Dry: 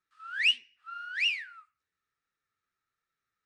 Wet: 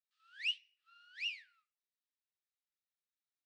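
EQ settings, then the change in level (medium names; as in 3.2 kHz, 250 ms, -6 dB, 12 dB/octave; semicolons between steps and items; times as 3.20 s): ladder band-pass 4.4 kHz, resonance 25%; +1.0 dB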